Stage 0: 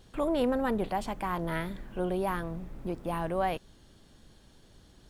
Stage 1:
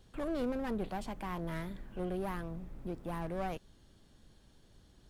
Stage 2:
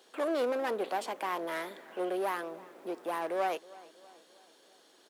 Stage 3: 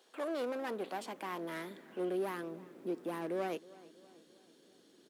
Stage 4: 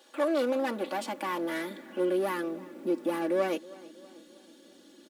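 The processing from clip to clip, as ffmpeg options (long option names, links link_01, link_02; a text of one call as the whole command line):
ffmpeg -i in.wav -filter_complex "[0:a]lowshelf=frequency=190:gain=3,acrossover=split=370[link_01][link_02];[link_02]aeval=exprs='clip(val(0),-1,0.0141)':channel_layout=same[link_03];[link_01][link_03]amix=inputs=2:normalize=0,volume=-6.5dB" out.wav
ffmpeg -i in.wav -filter_complex "[0:a]highpass=frequency=370:width=0.5412,highpass=frequency=370:width=1.3066,asplit=2[link_01][link_02];[link_02]adelay=320,lowpass=frequency=3300:poles=1,volume=-20.5dB,asplit=2[link_03][link_04];[link_04]adelay=320,lowpass=frequency=3300:poles=1,volume=0.53,asplit=2[link_05][link_06];[link_06]adelay=320,lowpass=frequency=3300:poles=1,volume=0.53,asplit=2[link_07][link_08];[link_08]adelay=320,lowpass=frequency=3300:poles=1,volume=0.53[link_09];[link_01][link_03][link_05][link_07][link_09]amix=inputs=5:normalize=0,volume=8dB" out.wav
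ffmpeg -i in.wav -af "asubboost=boost=11:cutoff=250,volume=-5.5dB" out.wav
ffmpeg -i in.wav -af "aecho=1:1:3.5:0.84,volume=6dB" out.wav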